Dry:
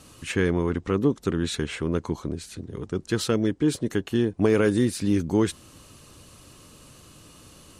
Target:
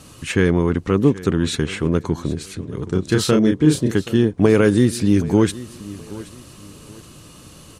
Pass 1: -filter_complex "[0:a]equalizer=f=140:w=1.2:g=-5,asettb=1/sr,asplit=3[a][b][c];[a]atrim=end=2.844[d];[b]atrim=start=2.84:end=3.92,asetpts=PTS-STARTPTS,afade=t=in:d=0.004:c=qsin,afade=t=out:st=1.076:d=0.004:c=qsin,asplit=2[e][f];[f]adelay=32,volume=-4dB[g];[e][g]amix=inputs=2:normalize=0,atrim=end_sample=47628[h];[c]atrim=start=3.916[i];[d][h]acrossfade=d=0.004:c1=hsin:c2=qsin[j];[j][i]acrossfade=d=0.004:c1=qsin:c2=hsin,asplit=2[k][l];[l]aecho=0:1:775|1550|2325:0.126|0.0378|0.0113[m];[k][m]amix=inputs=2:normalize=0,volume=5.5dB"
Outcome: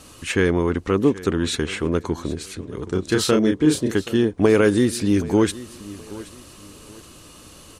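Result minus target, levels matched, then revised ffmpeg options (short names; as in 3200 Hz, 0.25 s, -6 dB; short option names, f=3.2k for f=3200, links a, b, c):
125 Hz band -4.0 dB
-filter_complex "[0:a]equalizer=f=140:w=1.2:g=3.5,asettb=1/sr,asplit=3[a][b][c];[a]atrim=end=2.844[d];[b]atrim=start=2.84:end=3.92,asetpts=PTS-STARTPTS,afade=t=in:d=0.004:c=qsin,afade=t=out:st=1.076:d=0.004:c=qsin,asplit=2[e][f];[f]adelay=32,volume=-4dB[g];[e][g]amix=inputs=2:normalize=0,atrim=end_sample=47628[h];[c]atrim=start=3.916[i];[d][h]acrossfade=d=0.004:c1=hsin:c2=qsin[j];[j][i]acrossfade=d=0.004:c1=qsin:c2=hsin,asplit=2[k][l];[l]aecho=0:1:775|1550|2325:0.126|0.0378|0.0113[m];[k][m]amix=inputs=2:normalize=0,volume=5.5dB"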